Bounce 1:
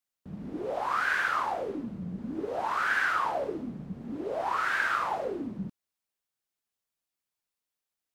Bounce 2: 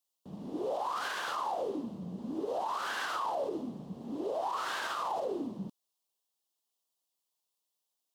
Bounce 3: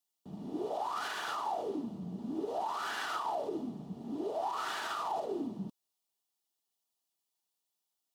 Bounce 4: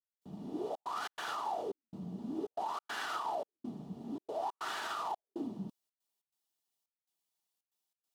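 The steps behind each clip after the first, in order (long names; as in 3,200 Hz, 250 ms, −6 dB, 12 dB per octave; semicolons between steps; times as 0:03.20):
high-pass filter 450 Hz 6 dB per octave; flat-topped bell 1,800 Hz −13 dB 1.1 octaves; brickwall limiter −30.5 dBFS, peak gain reduction 10.5 dB; level +4 dB
notch comb filter 530 Hz
gate pattern "..xxxxx.xx.xxxxx" 140 BPM −60 dB; level −1.5 dB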